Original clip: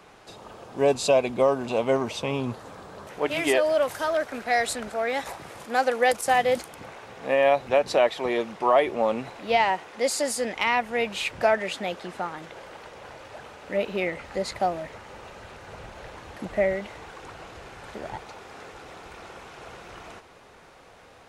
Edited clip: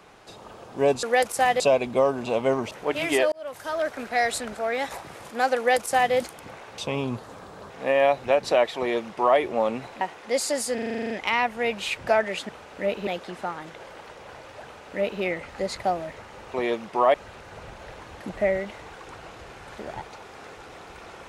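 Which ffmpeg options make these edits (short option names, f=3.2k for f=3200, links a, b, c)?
-filter_complex "[0:a]asplit=21[a][b][c][d][e][f][g][h][i][j][k][l][m][n][o][p][q][r][s][t][u];[a]atrim=end=1.032[v];[b]atrim=start=5.918:end=6.492[w];[c]atrim=start=1.028:end=2.142[x];[d]atrim=start=3.058:end=3.67,asetpts=PTS-STARTPTS,afade=t=out:st=0.608:d=0.004:c=hsin[y];[e]atrim=start=3.67:end=7.132,asetpts=PTS-STARTPTS,afade=t=in:d=0.57[z];[f]atrim=start=2.138:end=3.062[aa];[g]atrim=start=7.128:end=9.442[ab];[h]atrim=start=9.708:end=10.482[ac];[i]atrim=start=10.438:end=10.482[ad];[j]atrim=start=10.438:end=10.482[ae];[k]atrim=start=10.438:end=10.482[af];[l]atrim=start=10.438:end=10.482[ag];[m]atrim=start=10.438:end=10.482[ah];[n]atrim=start=10.438:end=10.482[ai];[o]atrim=start=10.438:end=10.482[aj];[p]atrim=start=10.438:end=10.482[ak];[q]atrim=start=10.438:end=11.832[al];[r]atrim=start=13.398:end=13.982[am];[s]atrim=start=11.828:end=15.302[an];[t]atrim=start=8.208:end=8.812[ao];[u]atrim=start=15.298[ap];[v][w]acrossfade=d=0.004:c1=hsin:c2=hsin[aq];[aq][x]acrossfade=d=0.004:c1=hsin:c2=hsin[ar];[y][z]concat=n=2:v=0:a=1[as];[ar][as]acrossfade=d=0.004:c1=hsin:c2=hsin[at];[at][aa]acrossfade=d=0.004:c1=hsin:c2=hsin[au];[au][ab]acrossfade=d=0.004:c1=hsin:c2=hsin[av];[av][ac]acrossfade=d=0.004:c1=hsin:c2=hsin[aw];[aw][ad]acrossfade=d=0.004:c1=hsin:c2=hsin[ax];[ax][ae]acrossfade=d=0.004:c1=hsin:c2=hsin[ay];[ay][af]acrossfade=d=0.004:c1=hsin:c2=hsin[az];[az][ag]acrossfade=d=0.004:c1=hsin:c2=hsin[ba];[ba][ah]acrossfade=d=0.004:c1=hsin:c2=hsin[bb];[bb][ai]acrossfade=d=0.004:c1=hsin:c2=hsin[bc];[bc][aj]acrossfade=d=0.004:c1=hsin:c2=hsin[bd];[bd][ak]acrossfade=d=0.004:c1=hsin:c2=hsin[be];[be][al]acrossfade=d=0.004:c1=hsin:c2=hsin[bf];[bf][am]acrossfade=d=0.004:c1=hsin:c2=hsin[bg];[bg][an]acrossfade=d=0.004:c1=hsin:c2=hsin[bh];[bh][ao]acrossfade=d=0.004:c1=hsin:c2=hsin[bi];[bi][ap]acrossfade=d=0.004:c1=hsin:c2=hsin"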